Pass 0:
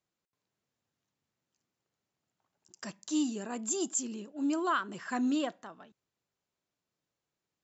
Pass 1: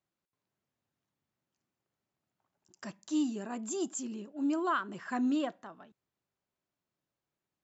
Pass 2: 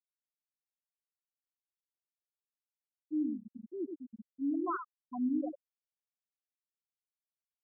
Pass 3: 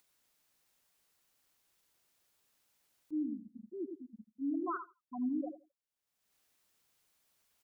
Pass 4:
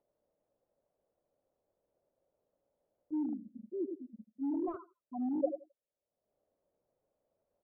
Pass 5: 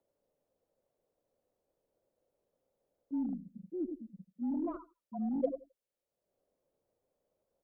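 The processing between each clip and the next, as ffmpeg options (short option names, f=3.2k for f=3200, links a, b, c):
-af "highshelf=f=3.3k:g=-8.5,bandreject=f=470:w=12"
-filter_complex "[0:a]asplit=2[a][b];[b]adelay=101,lowpass=f=1.6k:p=1,volume=-4.5dB,asplit=2[c][d];[d]adelay=101,lowpass=f=1.6k:p=1,volume=0.16,asplit=2[e][f];[f]adelay=101,lowpass=f=1.6k:p=1,volume=0.16[g];[a][c][e][g]amix=inputs=4:normalize=0,afftfilt=real='re*gte(hypot(re,im),0.158)':imag='im*gte(hypot(re,im),0.158)':win_size=1024:overlap=0.75,volume=-3dB"
-filter_complex "[0:a]asplit=2[a][b];[b]adelay=83,lowpass=f=1.1k:p=1,volume=-16dB,asplit=2[c][d];[d]adelay=83,lowpass=f=1.1k:p=1,volume=0.2[e];[a][c][e]amix=inputs=3:normalize=0,acompressor=mode=upward:threshold=-53dB:ratio=2.5,volume=-2.5dB"
-af "asoftclip=type=hard:threshold=-33.5dB,lowpass=f=570:t=q:w=4.9"
-af "aeval=exprs='0.106*(cos(1*acos(clip(val(0)/0.106,-1,1)))-cos(1*PI/2))+0.000596*(cos(8*acos(clip(val(0)/0.106,-1,1)))-cos(8*PI/2))':c=same,afreqshift=-29"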